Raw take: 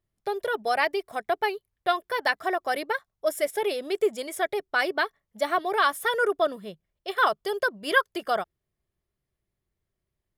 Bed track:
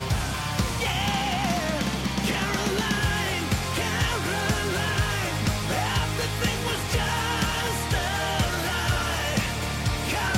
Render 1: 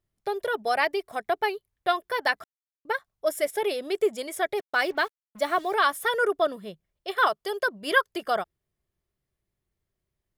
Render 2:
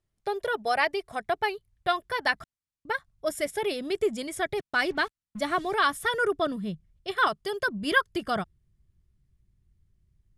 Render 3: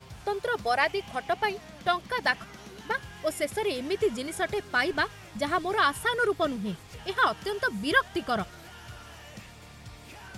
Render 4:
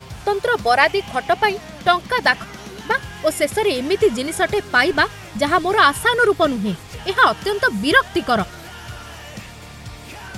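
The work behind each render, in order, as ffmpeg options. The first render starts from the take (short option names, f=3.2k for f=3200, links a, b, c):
-filter_complex "[0:a]asettb=1/sr,asplit=3[a][b][c];[a]atrim=end=4.574[d];[b]atrim=start=4.57:end=5.74,asetpts=PTS-STARTPTS,afade=t=in:d=0.004:c=qsin,afade=t=out:st=1.166:d=0.004:c=qsin,acrusher=bits=7:mix=0:aa=0.5[e];[c]atrim=start=5.736[f];[d][e]acrossfade=d=0.004:c1=hsin:c2=qsin[g];[g][f]acrossfade=d=0.004:c1=qsin:c2=hsin,asettb=1/sr,asplit=3[h][i][j];[h]atrim=end=7.274[k];[i]atrim=start=7.27:end=7.68,asetpts=PTS-STARTPTS,afade=t=in:d=0.004:c=qsin,afade=t=out:st=0.406:d=0.004:c=qsin,lowshelf=f=210:g=-9.5[l];[j]atrim=start=7.676[m];[k][l]acrossfade=d=0.004:c1=hsin:c2=qsin[n];[n][m]acrossfade=d=0.004:c1=qsin:c2=hsin,asplit=3[o][p][q];[o]atrim=end=2.44,asetpts=PTS-STARTPTS,afade=t=out:st=2.436:d=0.004:c=hsin[r];[p]atrim=start=2.44:end=2.85,asetpts=PTS-STARTPTS,volume=0[s];[q]atrim=start=2.85,asetpts=PTS-STARTPTS,afade=t=in:d=0.004:c=hsin[t];[r][s][t]concat=n=3:v=0:a=1"
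-af "lowpass=f=11k:w=0.5412,lowpass=f=11k:w=1.3066,asubboost=boost=10:cutoff=170"
-filter_complex "[1:a]volume=-20dB[a];[0:a][a]amix=inputs=2:normalize=0"
-af "volume=10.5dB,alimiter=limit=-1dB:level=0:latency=1"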